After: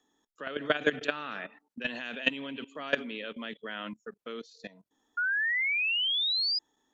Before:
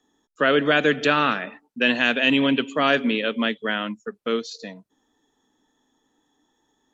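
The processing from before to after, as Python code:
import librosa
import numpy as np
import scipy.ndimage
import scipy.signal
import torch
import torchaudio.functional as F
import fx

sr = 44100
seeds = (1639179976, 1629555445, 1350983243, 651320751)

y = fx.low_shelf(x, sr, hz=310.0, db=-5.5)
y = fx.level_steps(y, sr, step_db=18)
y = fx.spec_paint(y, sr, seeds[0], shape='rise', start_s=5.17, length_s=1.42, low_hz=1400.0, high_hz=5000.0, level_db=-26.0)
y = y * librosa.db_to_amplitude(-2.5)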